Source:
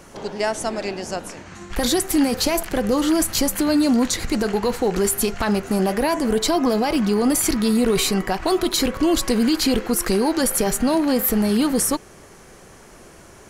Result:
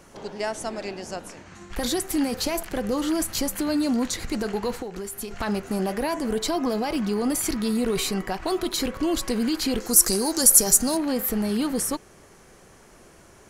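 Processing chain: 4.78–5.31 compressor 12:1, threshold -24 dBFS, peak gain reduction 9.5 dB; 9.8–10.97 resonant high shelf 4200 Hz +13 dB, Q 1.5; gain -6 dB

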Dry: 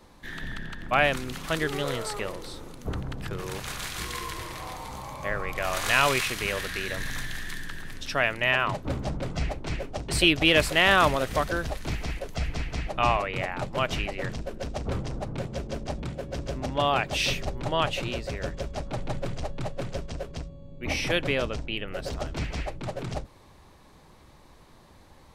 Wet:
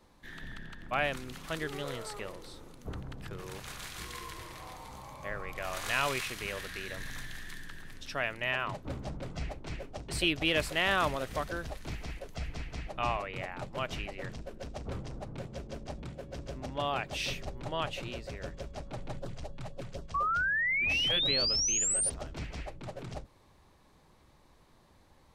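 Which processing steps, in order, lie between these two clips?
19.19–21.26 LFO notch sine 4 Hz 280–2500 Hz; 20.14–22.1 painted sound rise 1100–9600 Hz -21 dBFS; gain -8.5 dB

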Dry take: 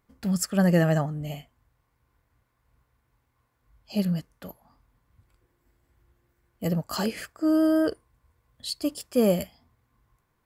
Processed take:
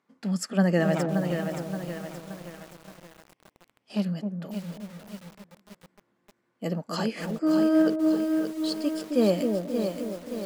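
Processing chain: 0.94–4.05 minimum comb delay 0.37 ms; Chebyshev high-pass 200 Hz, order 3; air absorption 60 m; dark delay 0.266 s, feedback 45%, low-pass 750 Hz, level -5 dB; lo-fi delay 0.574 s, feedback 55%, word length 7-bit, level -6.5 dB

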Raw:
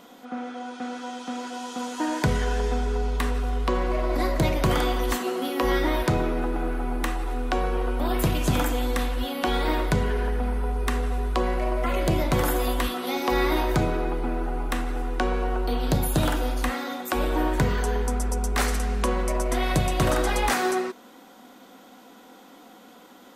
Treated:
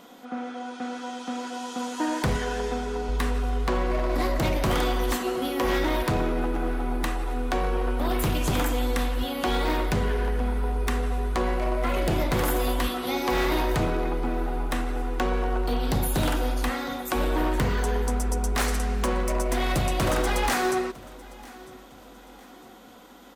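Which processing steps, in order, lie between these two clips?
2.36–3.09 HPF 130 Hz 6 dB/oct; wavefolder -18 dBFS; feedback echo 0.955 s, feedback 39%, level -22 dB

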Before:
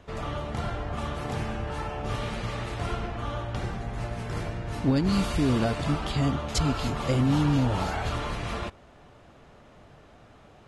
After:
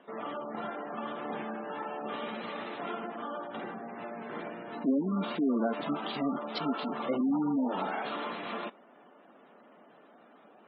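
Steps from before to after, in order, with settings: elliptic band-pass 220–3900 Hz, stop band 40 dB; spectral gate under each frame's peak -20 dB strong; gain -2 dB

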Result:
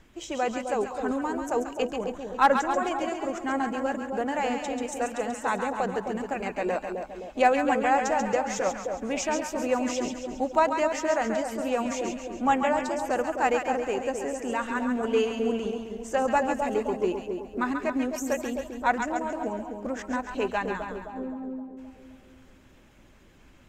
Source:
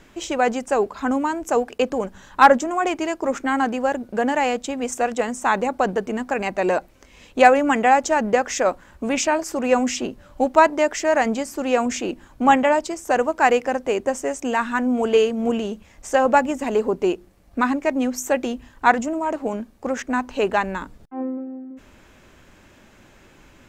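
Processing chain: bin magnitudes rounded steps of 15 dB; low shelf 110 Hz +5.5 dB; split-band echo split 860 Hz, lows 0.26 s, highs 0.137 s, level -5.5 dB; gain -8 dB

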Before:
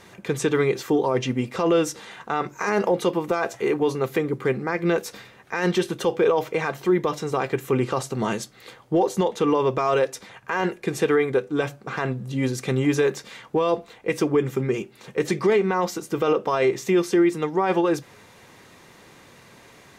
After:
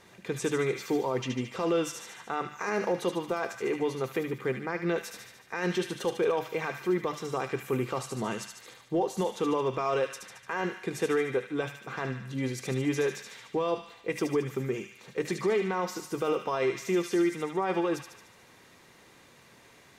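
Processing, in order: notches 50/100/150/200 Hz; on a send: thin delay 74 ms, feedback 60%, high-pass 1700 Hz, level -4 dB; on the sum: gain -7.5 dB

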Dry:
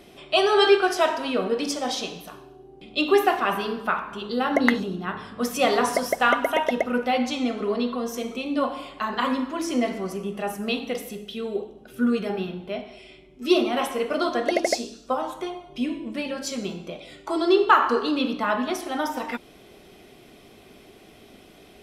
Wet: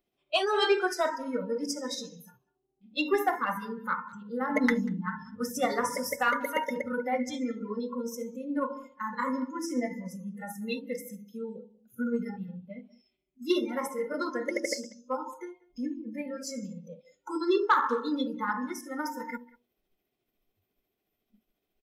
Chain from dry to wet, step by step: de-hum 80.46 Hz, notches 12; spectral noise reduction 28 dB; 4.49–5.36 comb 4.6 ms, depth 86%; 6.03–6.78 high shelf 5900 Hz +5.5 dB; soft clip -8.5 dBFS, distortion -23 dB; tremolo 14 Hz, depth 36%; speakerphone echo 0.19 s, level -22 dB; gain -3.5 dB

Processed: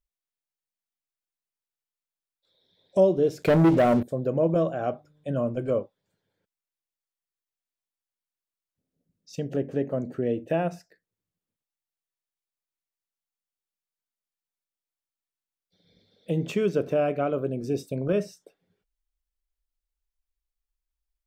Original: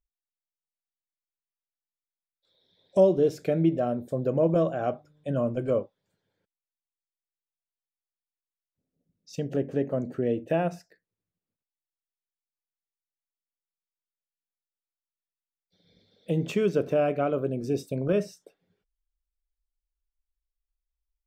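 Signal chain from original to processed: 3.42–4.03 sample leveller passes 3

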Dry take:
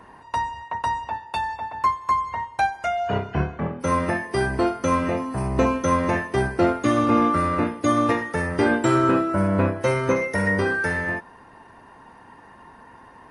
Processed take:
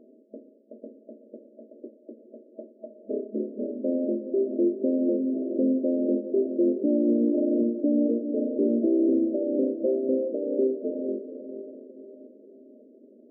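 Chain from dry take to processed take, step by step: tracing distortion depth 0.17 ms; bell 510 Hz -5.5 dB 0.43 oct; diffused feedback echo 0.465 s, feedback 49%, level -10 dB; FFT band-pass 210–650 Hz; limiter -17 dBFS, peak gain reduction 6 dB; gain +2 dB

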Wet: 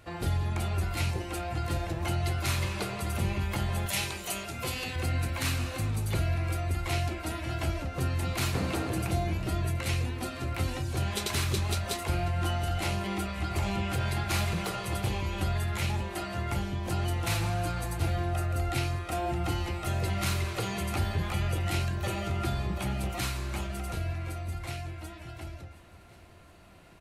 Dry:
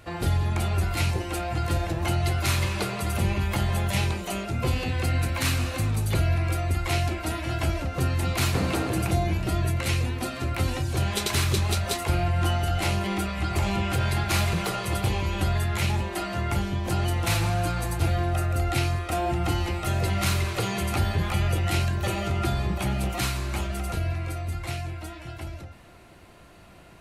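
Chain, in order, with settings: 3.86–4.96 tilt +2.5 dB/oct; on a send: feedback echo 0.724 s, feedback 54%, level -19 dB; on the sum: gain -5 dB

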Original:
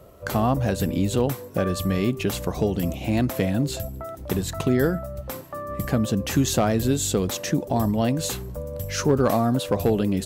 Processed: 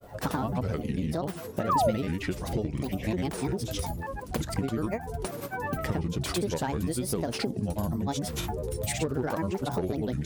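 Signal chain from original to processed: grains, pitch spread up and down by 7 st; compressor, threshold -28 dBFS, peak gain reduction 12.5 dB; painted sound fall, 1.69–1.91, 490–1300 Hz -25 dBFS; gain +1.5 dB

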